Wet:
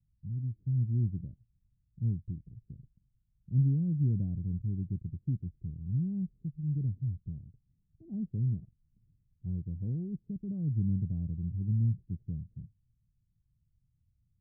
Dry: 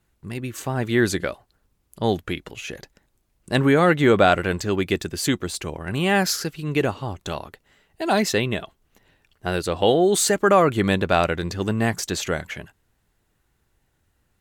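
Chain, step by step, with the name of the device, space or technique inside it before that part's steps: 8.13–9.69 bell 1900 Hz +11.5 dB 2.5 oct; the neighbour's flat through the wall (LPF 180 Hz 24 dB/oct; bell 120 Hz +6.5 dB 0.75 oct); gain -6 dB

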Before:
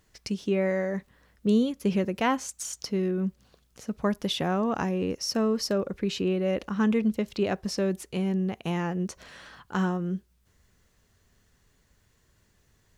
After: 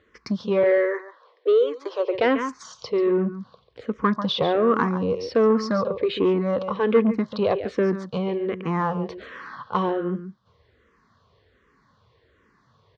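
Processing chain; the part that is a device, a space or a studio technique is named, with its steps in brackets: 0.63–2.15 steep high-pass 320 Hz 96 dB/oct; echo 0.141 s -12 dB; barber-pole phaser into a guitar amplifier (endless phaser -1.3 Hz; soft clip -22.5 dBFS, distortion -18 dB; speaker cabinet 96–4000 Hz, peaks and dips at 180 Hz -4 dB, 480 Hz +7 dB, 760 Hz -3 dB, 1100 Hz +10 dB, 2700 Hz -6 dB); gain +9 dB

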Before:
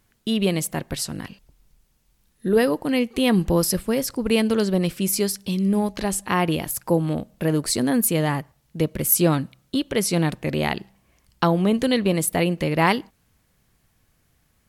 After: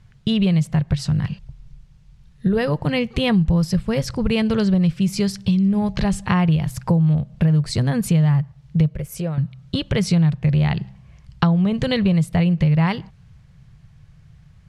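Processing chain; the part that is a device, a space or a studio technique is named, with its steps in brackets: jukebox (LPF 5100 Hz 12 dB/oct; resonant low shelf 200 Hz +10.5 dB, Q 3; compressor 4:1, threshold -22 dBFS, peak gain reduction 14 dB); 8.95–9.38 ten-band EQ 125 Hz -10 dB, 250 Hz -10 dB, 500 Hz +6 dB, 1000 Hz -6 dB, 4000 Hz -10 dB, 8000 Hz -4 dB; gain +5.5 dB

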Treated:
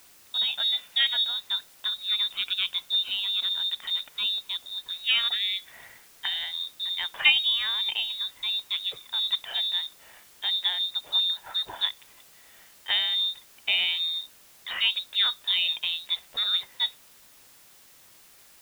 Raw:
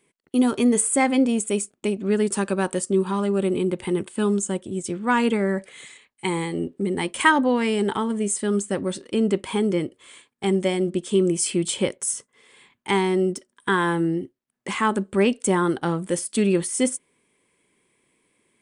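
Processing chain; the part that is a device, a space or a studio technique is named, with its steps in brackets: scrambled radio voice (BPF 360–2600 Hz; inverted band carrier 4000 Hz; white noise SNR 25 dB); gain -2 dB

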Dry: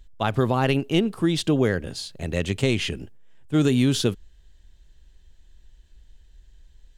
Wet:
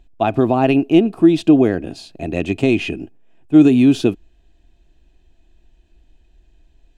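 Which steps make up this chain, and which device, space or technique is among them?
inside a helmet (high shelf 4600 Hz -5.5 dB; small resonant body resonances 310/680/2500 Hz, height 15 dB, ringing for 25 ms); gain -2 dB

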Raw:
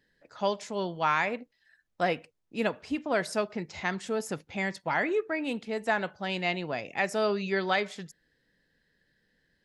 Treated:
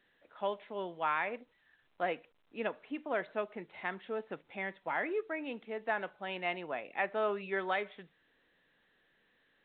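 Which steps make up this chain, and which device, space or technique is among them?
6.26–7.71 dynamic EQ 1100 Hz, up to +4 dB, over -40 dBFS, Q 1.1; telephone (BPF 280–3100 Hz; gain -6 dB; A-law 64 kbps 8000 Hz)

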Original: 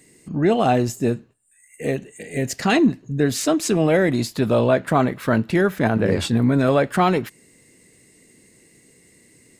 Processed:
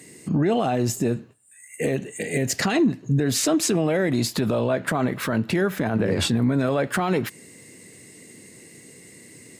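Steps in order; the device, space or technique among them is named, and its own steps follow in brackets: podcast mastering chain (HPF 81 Hz 24 dB/oct; compressor 3:1, threshold -23 dBFS, peak gain reduction 8.5 dB; limiter -20 dBFS, peak gain reduction 10.5 dB; gain +7.5 dB; MP3 112 kbps 44100 Hz)

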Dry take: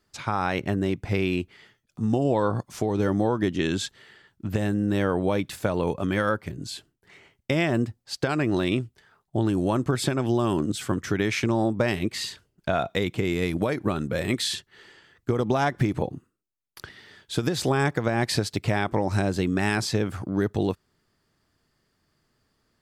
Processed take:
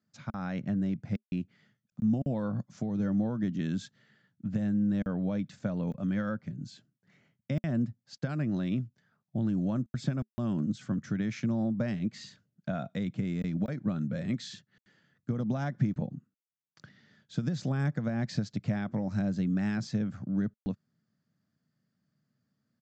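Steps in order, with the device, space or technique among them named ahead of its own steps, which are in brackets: call with lost packets (HPF 130 Hz 24 dB/oct; downsampling 16000 Hz; packet loss packets of 20 ms bursts); EQ curve 220 Hz 0 dB, 390 Hz -19 dB, 580 Hz -10 dB, 930 Hz -19 dB, 1500 Hz -12 dB, 2700 Hz -18 dB, 6000 Hz -14 dB

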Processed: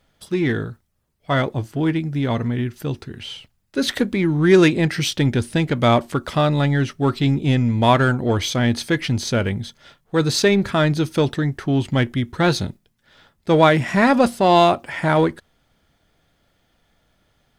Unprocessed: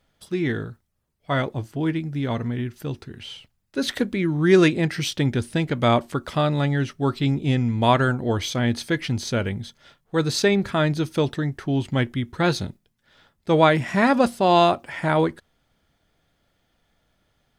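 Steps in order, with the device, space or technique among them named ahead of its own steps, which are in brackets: parallel distortion (in parallel at -8 dB: hard clip -21 dBFS, distortion -7 dB); on the sum: gain +1.5 dB

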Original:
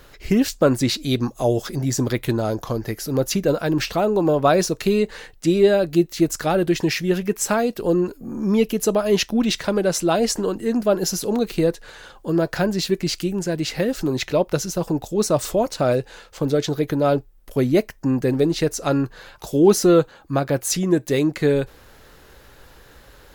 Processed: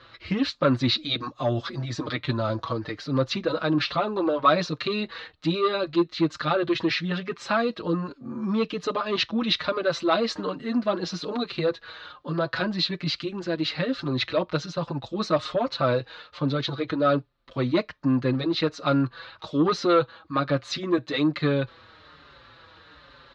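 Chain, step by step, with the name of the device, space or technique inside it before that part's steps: barber-pole flanger into a guitar amplifier (endless flanger 5.5 ms -1.2 Hz; soft clip -11.5 dBFS, distortion -19 dB; speaker cabinet 100–4000 Hz, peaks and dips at 200 Hz -7 dB, 410 Hz -9 dB, 760 Hz -5 dB, 1200 Hz +8 dB, 4000 Hz +9 dB); gain +1.5 dB

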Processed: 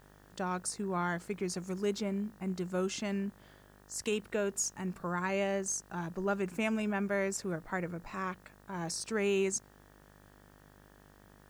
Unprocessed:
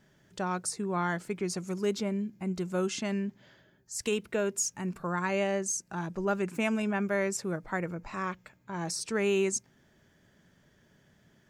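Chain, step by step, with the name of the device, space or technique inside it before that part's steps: video cassette with head-switching buzz (buzz 50 Hz, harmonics 38, -57 dBFS -3 dB/oct; white noise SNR 35 dB); gain -3 dB

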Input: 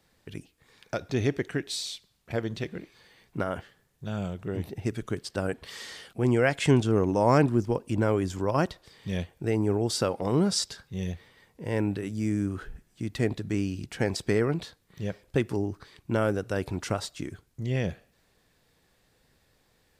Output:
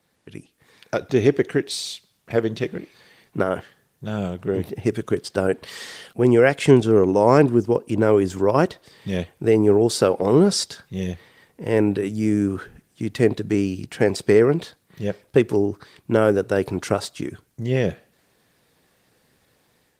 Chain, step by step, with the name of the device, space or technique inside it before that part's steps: dynamic EQ 420 Hz, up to +6 dB, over -39 dBFS, Q 2; video call (HPF 110 Hz 12 dB/oct; AGC gain up to 6 dB; gain +1 dB; Opus 24 kbps 48000 Hz)

